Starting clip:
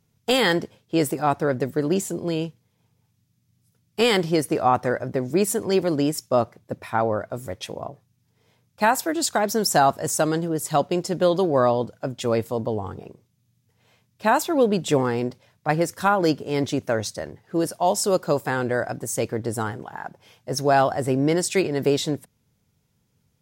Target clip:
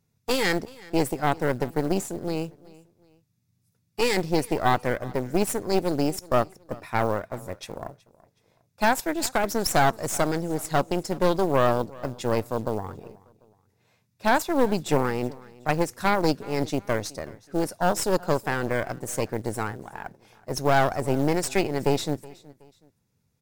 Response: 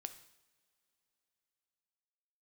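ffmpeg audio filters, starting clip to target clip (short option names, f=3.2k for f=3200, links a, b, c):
-af "bandreject=f=3.1k:w=7.8,acrusher=bits=7:mode=log:mix=0:aa=0.000001,aeval=exprs='0.447*(cos(1*acos(clip(val(0)/0.447,-1,1)))-cos(1*PI/2))+0.126*(cos(4*acos(clip(val(0)/0.447,-1,1)))-cos(4*PI/2))':c=same,aecho=1:1:372|744:0.0794|0.0278,volume=-4.5dB"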